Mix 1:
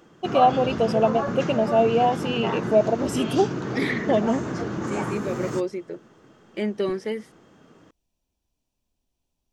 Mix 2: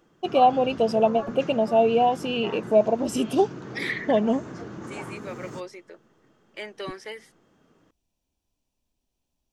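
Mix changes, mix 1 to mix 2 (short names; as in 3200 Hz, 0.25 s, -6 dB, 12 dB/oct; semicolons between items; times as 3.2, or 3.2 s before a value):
second voice: add HPF 790 Hz 12 dB/oct; background -9.0 dB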